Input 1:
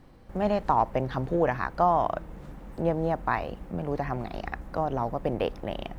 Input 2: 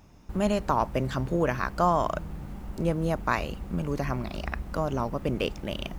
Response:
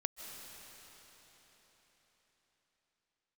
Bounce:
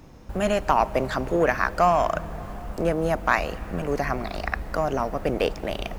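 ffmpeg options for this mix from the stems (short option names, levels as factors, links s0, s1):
-filter_complex "[0:a]equalizer=f=420:w=1.5:g=3,asoftclip=type=tanh:threshold=0.178,volume=1.06,asplit=2[s0][s1];[s1]volume=0.282[s2];[1:a]volume=-1,volume=1.26,asplit=2[s3][s4];[s4]volume=0.251[s5];[2:a]atrim=start_sample=2205[s6];[s2][s5]amix=inputs=2:normalize=0[s7];[s7][s6]afir=irnorm=-1:irlink=0[s8];[s0][s3][s8]amix=inputs=3:normalize=0"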